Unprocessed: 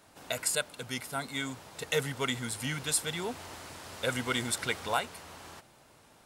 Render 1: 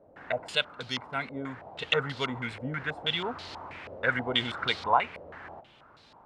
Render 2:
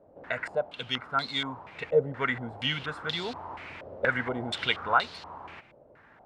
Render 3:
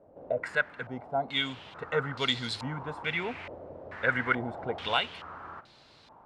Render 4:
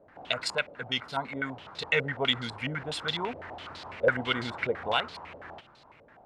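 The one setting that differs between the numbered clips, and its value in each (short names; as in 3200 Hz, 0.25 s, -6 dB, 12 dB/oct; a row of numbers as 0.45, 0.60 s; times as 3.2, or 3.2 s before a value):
stepped low-pass, rate: 6.2, 4.2, 2.3, 12 Hz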